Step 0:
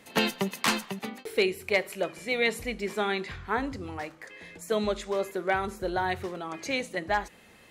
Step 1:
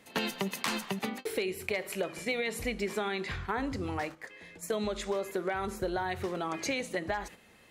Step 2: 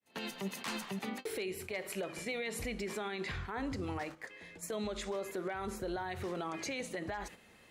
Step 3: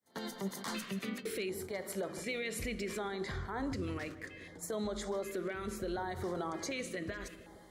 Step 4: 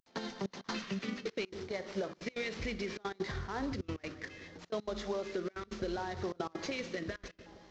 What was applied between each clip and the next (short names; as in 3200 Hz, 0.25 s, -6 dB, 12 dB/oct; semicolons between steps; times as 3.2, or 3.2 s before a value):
gate -43 dBFS, range -8 dB; limiter -19.5 dBFS, peak gain reduction 5.5 dB; compressor, threshold -33 dBFS, peak gain reduction 9 dB; gain +4 dB
opening faded in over 0.50 s; bell 13000 Hz -3.5 dB 0.27 oct; limiter -28 dBFS, peak gain reduction 11 dB; gain -1.5 dB
darkening echo 0.155 s, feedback 71%, low-pass 1300 Hz, level -13.5 dB; LFO notch square 0.67 Hz 840–2600 Hz; gain +1 dB
CVSD 32 kbps; step gate "xxxxxx.x.xx" 197 bpm -24 dB; transient shaper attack +4 dB, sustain 0 dB